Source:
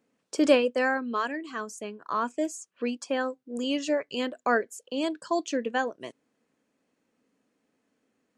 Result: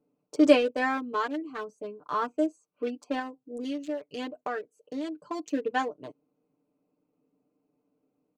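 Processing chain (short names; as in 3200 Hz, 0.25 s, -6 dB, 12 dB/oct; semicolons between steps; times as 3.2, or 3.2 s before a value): Wiener smoothing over 25 samples; comb 6.7 ms, depth 83%; 3.19–5.5 compressor 3:1, threshold -31 dBFS, peak gain reduction 11 dB; gain -1.5 dB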